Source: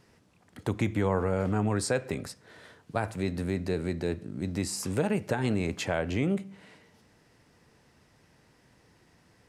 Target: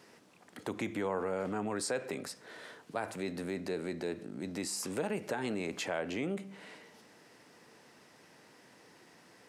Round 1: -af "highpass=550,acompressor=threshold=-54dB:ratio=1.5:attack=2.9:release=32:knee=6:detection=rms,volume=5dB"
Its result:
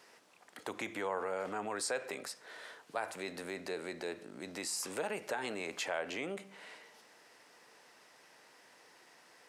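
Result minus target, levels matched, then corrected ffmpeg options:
250 Hz band -6.0 dB
-af "highpass=250,acompressor=threshold=-54dB:ratio=1.5:attack=2.9:release=32:knee=6:detection=rms,volume=5dB"

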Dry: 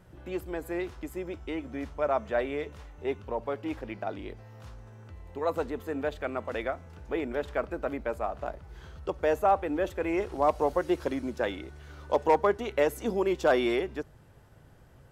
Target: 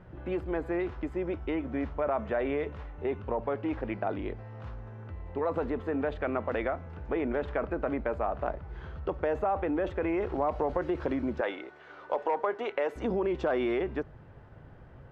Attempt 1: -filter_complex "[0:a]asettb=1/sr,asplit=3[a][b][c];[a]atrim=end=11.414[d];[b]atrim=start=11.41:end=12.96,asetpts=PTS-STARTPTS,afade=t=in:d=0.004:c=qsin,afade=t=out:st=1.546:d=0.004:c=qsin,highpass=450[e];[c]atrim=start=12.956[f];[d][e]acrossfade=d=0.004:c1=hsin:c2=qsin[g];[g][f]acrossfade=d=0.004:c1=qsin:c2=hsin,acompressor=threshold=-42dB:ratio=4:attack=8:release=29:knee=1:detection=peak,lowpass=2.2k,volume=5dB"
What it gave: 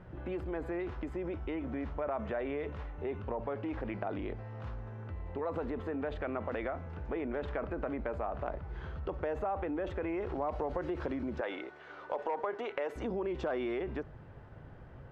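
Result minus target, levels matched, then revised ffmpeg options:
compressor: peak gain reduction +6 dB
-filter_complex "[0:a]asettb=1/sr,asplit=3[a][b][c];[a]atrim=end=11.414[d];[b]atrim=start=11.41:end=12.96,asetpts=PTS-STARTPTS,afade=t=in:d=0.004:c=qsin,afade=t=out:st=1.546:d=0.004:c=qsin,highpass=450[e];[c]atrim=start=12.956[f];[d][e]acrossfade=d=0.004:c1=hsin:c2=qsin[g];[g][f]acrossfade=d=0.004:c1=qsin:c2=hsin,acompressor=threshold=-34dB:ratio=4:attack=8:release=29:knee=1:detection=peak,lowpass=2.2k,volume=5dB"

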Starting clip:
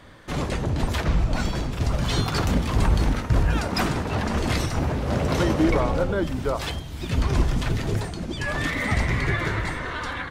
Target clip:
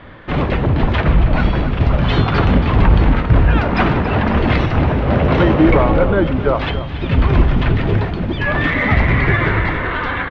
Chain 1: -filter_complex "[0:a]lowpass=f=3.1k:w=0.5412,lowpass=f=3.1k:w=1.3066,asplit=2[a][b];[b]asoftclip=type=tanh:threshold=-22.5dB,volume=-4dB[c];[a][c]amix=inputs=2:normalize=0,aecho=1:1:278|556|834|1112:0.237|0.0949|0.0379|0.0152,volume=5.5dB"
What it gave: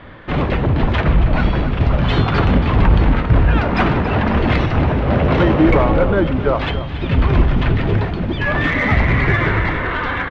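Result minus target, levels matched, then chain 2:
soft clip: distortion +7 dB
-filter_complex "[0:a]lowpass=f=3.1k:w=0.5412,lowpass=f=3.1k:w=1.3066,asplit=2[a][b];[b]asoftclip=type=tanh:threshold=-16dB,volume=-4dB[c];[a][c]amix=inputs=2:normalize=0,aecho=1:1:278|556|834|1112:0.237|0.0949|0.0379|0.0152,volume=5.5dB"

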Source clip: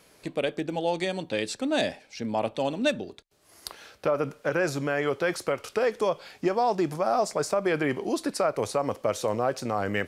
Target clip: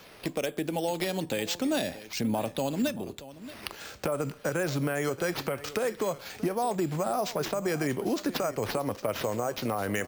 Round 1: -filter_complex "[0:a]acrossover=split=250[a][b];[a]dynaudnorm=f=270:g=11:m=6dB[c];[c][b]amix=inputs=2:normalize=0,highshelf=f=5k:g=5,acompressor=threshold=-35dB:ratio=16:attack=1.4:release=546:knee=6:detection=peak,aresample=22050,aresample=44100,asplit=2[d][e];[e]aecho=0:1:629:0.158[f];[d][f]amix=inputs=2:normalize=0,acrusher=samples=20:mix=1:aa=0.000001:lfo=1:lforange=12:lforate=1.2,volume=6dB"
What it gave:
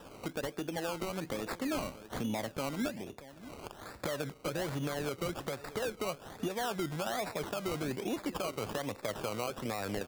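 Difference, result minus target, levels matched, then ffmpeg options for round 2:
compressor: peak gain reduction +6.5 dB; decimation with a swept rate: distortion +10 dB
-filter_complex "[0:a]acrossover=split=250[a][b];[a]dynaudnorm=f=270:g=11:m=6dB[c];[c][b]amix=inputs=2:normalize=0,highshelf=f=5k:g=5,acompressor=threshold=-28dB:ratio=16:attack=1.4:release=546:knee=6:detection=peak,aresample=22050,aresample=44100,asplit=2[d][e];[e]aecho=0:1:629:0.158[f];[d][f]amix=inputs=2:normalize=0,acrusher=samples=5:mix=1:aa=0.000001:lfo=1:lforange=3:lforate=1.2,volume=6dB"

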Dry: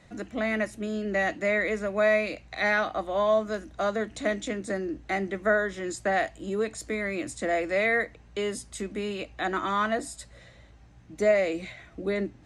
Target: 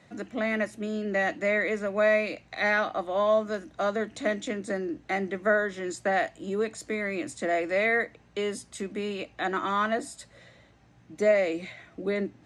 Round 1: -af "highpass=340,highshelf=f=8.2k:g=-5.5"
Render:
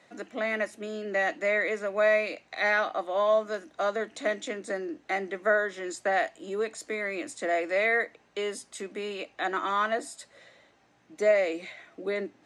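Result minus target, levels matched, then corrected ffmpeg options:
125 Hz band -9.0 dB
-af "highpass=120,highshelf=f=8.2k:g=-5.5"

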